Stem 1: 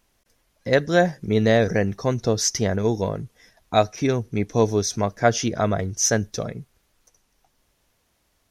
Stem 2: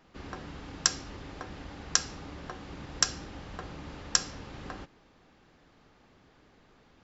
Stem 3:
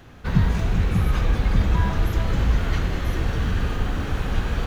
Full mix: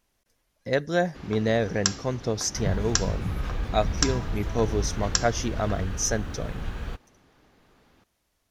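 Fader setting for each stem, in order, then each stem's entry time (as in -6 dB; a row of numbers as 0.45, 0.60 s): -6.0, +0.5, -9.5 dB; 0.00, 1.00, 2.30 s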